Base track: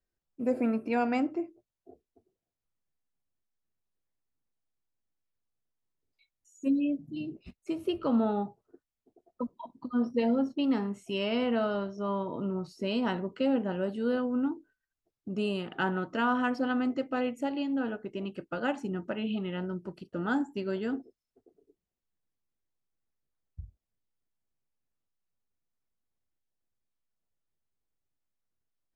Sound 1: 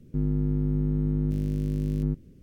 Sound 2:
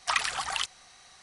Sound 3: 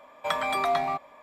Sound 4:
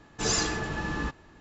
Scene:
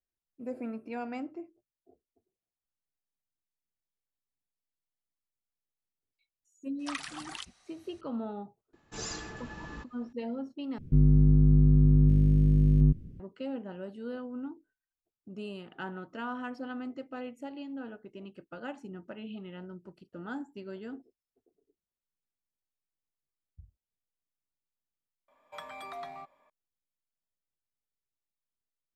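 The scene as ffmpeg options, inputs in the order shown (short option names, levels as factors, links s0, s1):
-filter_complex "[0:a]volume=0.335[s0];[1:a]bass=f=250:g=12,treble=f=4000:g=-7[s1];[s0]asplit=2[s2][s3];[s2]atrim=end=10.784[s4];[s1]atrim=end=2.42,asetpts=PTS-STARTPTS,volume=0.562[s5];[s3]atrim=start=13.196[s6];[2:a]atrim=end=1.22,asetpts=PTS-STARTPTS,volume=0.266,afade=t=in:d=0.004:c=hsin,afade=t=out:st=1.216:d=0.004:c=hsin,adelay=6790[s7];[4:a]atrim=end=1.4,asetpts=PTS-STARTPTS,volume=0.251,afade=t=in:d=0.004:c=hsin,afade=t=out:st=1.396:d=0.004:c=hsin,adelay=8730[s8];[3:a]atrim=end=1.22,asetpts=PTS-STARTPTS,volume=0.15,afade=t=in:d=0.004:c=hsin,afade=t=out:st=1.216:d=0.004:c=hsin,adelay=25280[s9];[s4][s5]acrossfade=d=0.004:c1=hsin:c2=hsin[s10];[s10][s6]acrossfade=d=0.004:c1=hsin:c2=hsin[s11];[s11][s7][s8][s9]amix=inputs=4:normalize=0"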